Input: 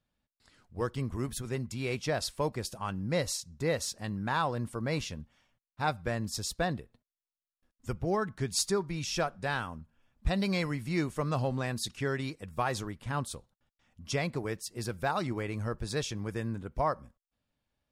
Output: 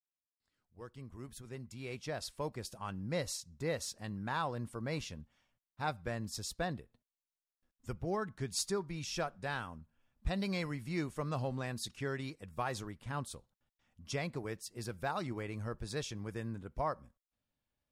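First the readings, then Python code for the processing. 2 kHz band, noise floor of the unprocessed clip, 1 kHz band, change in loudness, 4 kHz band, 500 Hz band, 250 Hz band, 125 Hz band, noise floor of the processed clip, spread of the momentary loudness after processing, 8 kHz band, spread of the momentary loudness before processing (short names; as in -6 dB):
-6.0 dB, under -85 dBFS, -6.0 dB, -6.0 dB, -6.0 dB, -6.5 dB, -6.5 dB, -6.5 dB, under -85 dBFS, 11 LU, -6.0 dB, 7 LU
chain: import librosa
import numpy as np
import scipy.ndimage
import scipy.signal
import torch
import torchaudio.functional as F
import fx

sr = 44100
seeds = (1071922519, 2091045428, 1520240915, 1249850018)

y = fx.fade_in_head(x, sr, length_s=2.96)
y = y * librosa.db_to_amplitude(-6.0)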